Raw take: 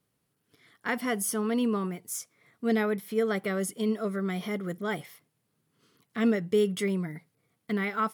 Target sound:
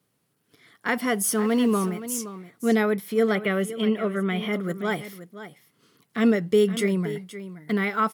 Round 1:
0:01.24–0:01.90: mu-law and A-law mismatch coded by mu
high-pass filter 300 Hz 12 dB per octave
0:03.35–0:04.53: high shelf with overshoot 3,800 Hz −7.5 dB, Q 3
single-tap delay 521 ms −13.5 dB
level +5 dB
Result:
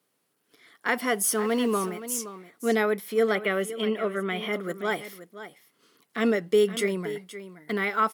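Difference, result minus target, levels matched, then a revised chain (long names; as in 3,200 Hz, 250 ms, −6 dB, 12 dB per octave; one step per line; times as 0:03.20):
125 Hz band −6.0 dB
0:01.24–0:01.90: mu-law and A-law mismatch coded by mu
high-pass filter 100 Hz 12 dB per octave
0:03.35–0:04.53: high shelf with overshoot 3,800 Hz −7.5 dB, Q 3
single-tap delay 521 ms −13.5 dB
level +5 dB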